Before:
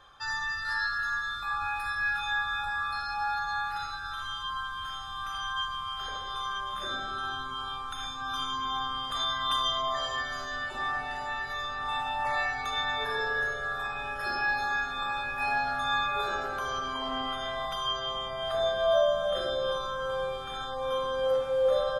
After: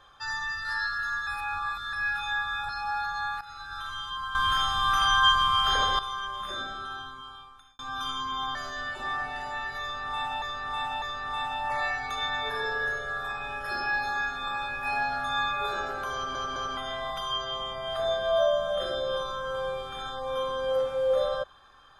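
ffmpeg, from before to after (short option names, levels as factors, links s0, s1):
-filter_complex "[0:a]asplit=14[s0][s1][s2][s3][s4][s5][s6][s7][s8][s9][s10][s11][s12][s13];[s0]atrim=end=1.272[s14];[s1]atrim=start=1.268:end=1.932,asetpts=PTS-STARTPTS,areverse[s15];[s2]atrim=start=1.928:end=2.692[s16];[s3]atrim=start=3.018:end=3.74,asetpts=PTS-STARTPTS,afade=t=out:st=0.718:d=0.004:c=hsin:silence=0.177828[s17];[s4]atrim=start=3.74:end=4.682,asetpts=PTS-STARTPTS,afade=t=in:d=0.37:silence=0.177828[s18];[s5]atrim=start=4.678:end=6.322,asetpts=PTS-STARTPTS,volume=3.98[s19];[s6]atrim=start=6.318:end=8.12,asetpts=PTS-STARTPTS,afade=t=out:st=0.512:d=1.29[s20];[s7]atrim=start=8.12:end=8.882,asetpts=PTS-STARTPTS,afade=t=in:d=0.004:c=hsin[s21];[s8]atrim=start=10.298:end=12.172[s22];[s9]atrim=start=11.568:end=12.172[s23];[s10]atrim=start=11.568:end=16.902[s24];[s11]atrim=start=16.688:end=16.902[s25];[s12]atrim=start=16.688:end=16.902[s26];[s13]atrim=start=17.318[s27];[s14][s15]acrossfade=d=0.004:c1=hsin:c2=hsin[s28];[s28][s16]acrossfade=d=0.004:c1=hsin:c2=hsin[s29];[s17][s18]concat=n=2:v=0:a=1[s30];[s29][s30]acrossfade=d=0.004:c1=hsin:c2=hsin[s31];[s31][s19]acrossfade=d=0.004:c1=hsin:c2=hsin[s32];[s20][s21]concat=n=2:v=0:a=1[s33];[s32][s33]acrossfade=d=0.004:c1=hsin:c2=hsin[s34];[s34][s22]acrossfade=d=0.004:c1=hsin:c2=hsin[s35];[s35][s23]acrossfade=d=0.004:c1=hsin:c2=hsin[s36];[s36][s24]acrossfade=d=0.004:c1=hsin:c2=hsin[s37];[s37][s25]acrossfade=d=0.004:c1=hsin:c2=hsin[s38];[s38][s26]acrossfade=d=0.004:c1=hsin:c2=hsin[s39];[s39][s27]acrossfade=d=0.004:c1=hsin:c2=hsin"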